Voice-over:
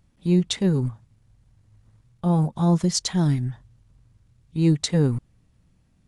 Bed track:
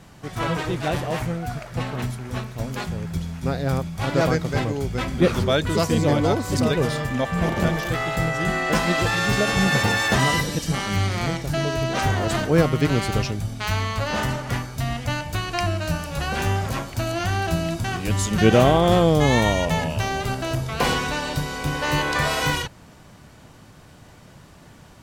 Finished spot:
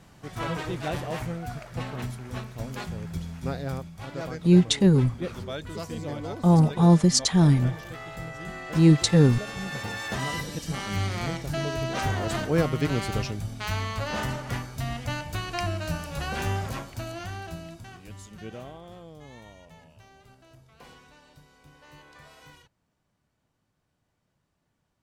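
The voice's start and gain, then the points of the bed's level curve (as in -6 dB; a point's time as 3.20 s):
4.20 s, +2.5 dB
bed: 3.51 s -6 dB
4.10 s -14.5 dB
9.69 s -14.5 dB
11.01 s -5.5 dB
16.60 s -5.5 dB
18.94 s -29 dB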